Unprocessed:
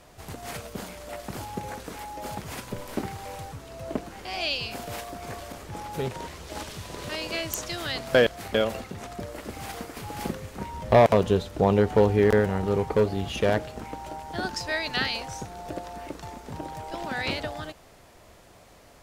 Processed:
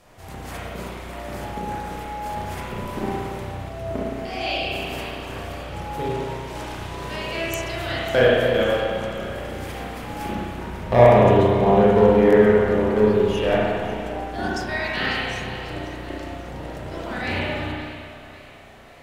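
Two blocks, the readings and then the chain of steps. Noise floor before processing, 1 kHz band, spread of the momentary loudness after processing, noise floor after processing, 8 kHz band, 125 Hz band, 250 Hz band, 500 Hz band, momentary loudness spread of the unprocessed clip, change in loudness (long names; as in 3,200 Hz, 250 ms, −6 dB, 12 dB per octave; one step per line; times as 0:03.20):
−53 dBFS, +6.0 dB, 18 LU, −42 dBFS, can't be measured, +5.0 dB, +6.5 dB, +6.5 dB, 17 LU, +6.0 dB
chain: dynamic equaliser 4,200 Hz, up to −4 dB, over −47 dBFS, Q 4.4
on a send: echo with a time of its own for lows and highs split 1,200 Hz, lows 305 ms, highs 546 ms, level −14 dB
on the sum: spring reverb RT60 1.9 s, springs 33/56 ms, chirp 75 ms, DRR −7 dB
level −2.5 dB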